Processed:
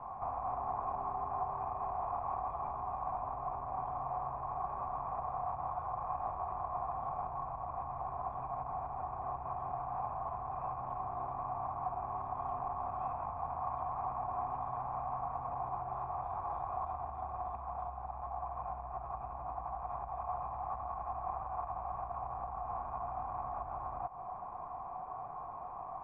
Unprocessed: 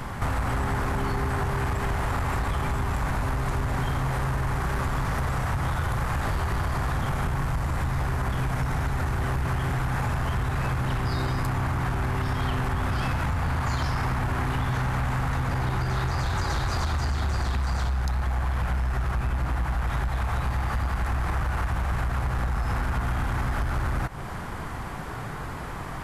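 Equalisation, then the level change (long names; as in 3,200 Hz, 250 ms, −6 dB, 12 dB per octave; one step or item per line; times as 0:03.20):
formant resonators in series a
+3.5 dB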